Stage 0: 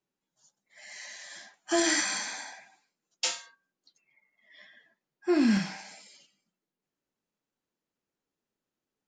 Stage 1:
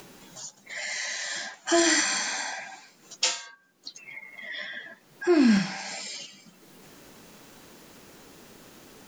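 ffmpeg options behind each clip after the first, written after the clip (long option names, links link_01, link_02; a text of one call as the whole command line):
ffmpeg -i in.wav -af "acompressor=mode=upward:threshold=-27dB:ratio=2.5,volume=4dB" out.wav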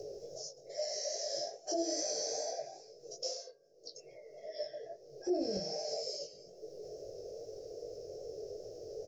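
ffmpeg -i in.wav -af "firequalizer=gain_entry='entry(120,0);entry(220,-25);entry(430,14);entry(650,7);entry(930,-30);entry(3500,-25);entry(5300,2);entry(8100,-24)':delay=0.05:min_phase=1,alimiter=level_in=3.5dB:limit=-24dB:level=0:latency=1:release=129,volume=-3.5dB,flanger=delay=18:depth=3.8:speed=2.4,volume=4dB" out.wav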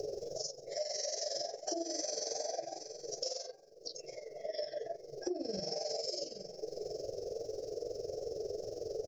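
ffmpeg -i in.wav -af "aecho=1:1:834:0.0891,tremolo=f=22:d=0.667,acompressor=threshold=-42dB:ratio=16,volume=8.5dB" out.wav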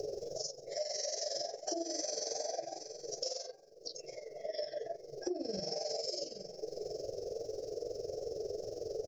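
ffmpeg -i in.wav -af anull out.wav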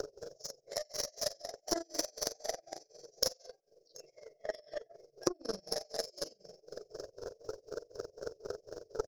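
ffmpeg -i in.wav -af "tremolo=f=4:d=0.93,aeval=exprs='0.0631*(cos(1*acos(clip(val(0)/0.0631,-1,1)))-cos(1*PI/2))+0.0178*(cos(3*acos(clip(val(0)/0.0631,-1,1)))-cos(3*PI/2))+0.000794*(cos(4*acos(clip(val(0)/0.0631,-1,1)))-cos(4*PI/2))+0.000355*(cos(7*acos(clip(val(0)/0.0631,-1,1)))-cos(7*PI/2))':channel_layout=same,volume=13.5dB" out.wav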